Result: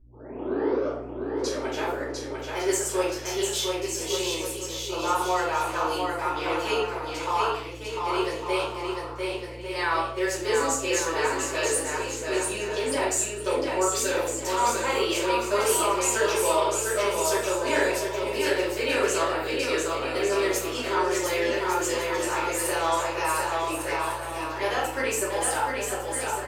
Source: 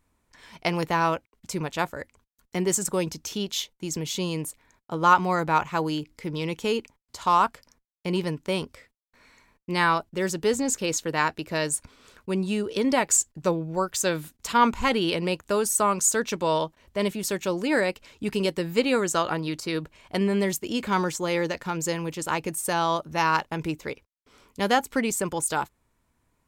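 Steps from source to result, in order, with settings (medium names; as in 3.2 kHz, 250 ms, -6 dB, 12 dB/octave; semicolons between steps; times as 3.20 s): tape start-up on the opening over 1.89 s; high-pass 400 Hz 24 dB/octave; peak limiter -16.5 dBFS, peak gain reduction 11.5 dB; hum 60 Hz, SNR 25 dB; wow and flutter 20 cents; bouncing-ball echo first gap 700 ms, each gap 0.65×, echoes 5; simulated room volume 100 m³, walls mixed, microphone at 2.7 m; trim -8.5 dB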